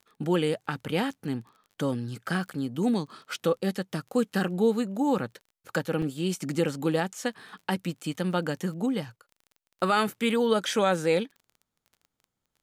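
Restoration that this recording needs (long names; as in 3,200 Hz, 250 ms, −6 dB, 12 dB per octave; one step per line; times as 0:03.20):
click removal
repair the gap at 0:04.30/0:06.02, 4.3 ms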